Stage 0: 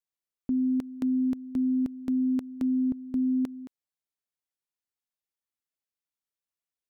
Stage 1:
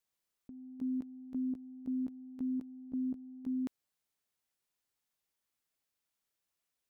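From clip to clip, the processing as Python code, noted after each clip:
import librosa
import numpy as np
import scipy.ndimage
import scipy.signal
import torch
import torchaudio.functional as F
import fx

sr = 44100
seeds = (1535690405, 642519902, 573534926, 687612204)

y = fx.over_compress(x, sr, threshold_db=-40.0, ratio=-1.0)
y = F.gain(torch.from_numpy(y), -2.5).numpy()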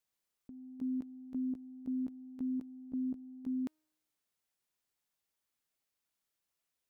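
y = fx.comb_fb(x, sr, f0_hz=310.0, decay_s=0.97, harmonics='all', damping=0.0, mix_pct=30)
y = F.gain(torch.from_numpy(y), 2.5).numpy()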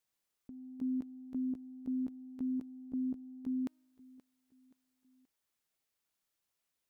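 y = fx.echo_feedback(x, sr, ms=527, feedback_pct=44, wet_db=-20.5)
y = F.gain(torch.from_numpy(y), 1.0).numpy()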